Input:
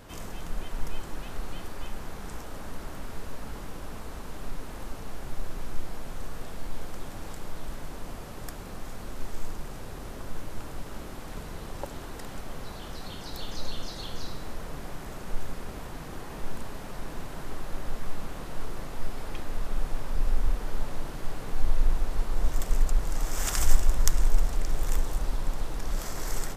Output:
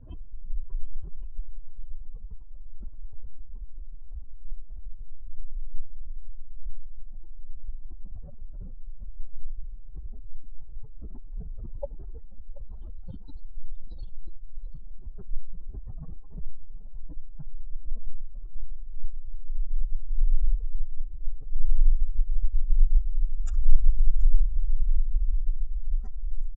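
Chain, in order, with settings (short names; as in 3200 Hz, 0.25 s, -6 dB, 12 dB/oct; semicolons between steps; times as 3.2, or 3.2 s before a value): spectral contrast raised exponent 3.2; low-pass opened by the level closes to 2700 Hz, open at -17 dBFS; echo 0.732 s -19 dB; gain +4.5 dB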